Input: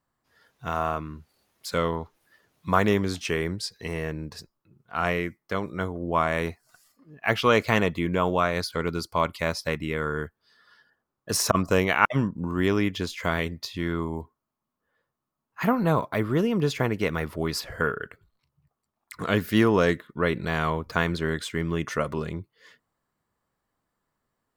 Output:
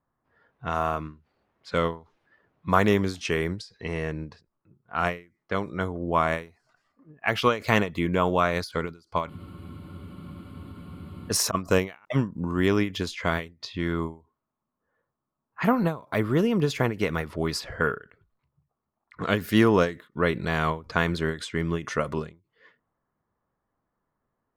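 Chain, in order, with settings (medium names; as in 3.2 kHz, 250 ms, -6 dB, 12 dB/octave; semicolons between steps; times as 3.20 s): level-controlled noise filter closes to 1.5 kHz, open at -23.5 dBFS; spectral freeze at 9.30 s, 2.00 s; endings held to a fixed fall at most 180 dB/s; trim +1 dB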